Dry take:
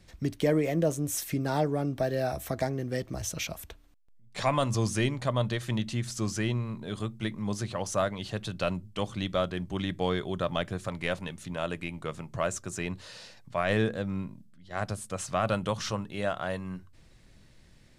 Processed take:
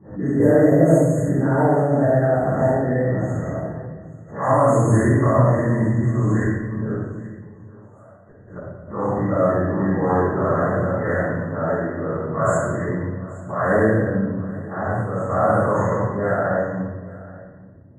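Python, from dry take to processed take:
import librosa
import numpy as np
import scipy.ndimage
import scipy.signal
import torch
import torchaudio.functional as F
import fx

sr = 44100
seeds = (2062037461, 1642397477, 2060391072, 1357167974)

y = fx.spec_dilate(x, sr, span_ms=120)
y = fx.env_lowpass(y, sr, base_hz=590.0, full_db=-18.5)
y = scipy.signal.sosfilt(scipy.signal.butter(4, 84.0, 'highpass', fs=sr, output='sos'), y)
y = fx.high_shelf(y, sr, hz=2900.0, db=-5.0)
y = fx.gate_flip(y, sr, shuts_db=-22.0, range_db=-30, at=(6.44, 8.9))
y = fx.brickwall_bandstop(y, sr, low_hz=2000.0, high_hz=6400.0)
y = y + 10.0 ** (-20.5 / 20.0) * np.pad(y, (int(828 * sr / 1000.0), 0))[:len(y)]
y = fx.room_shoebox(y, sr, seeds[0], volume_m3=760.0, walls='mixed', distance_m=9.7)
y = fx.pre_swell(y, sr, db_per_s=130.0)
y = F.gain(torch.from_numpy(y), -10.5).numpy()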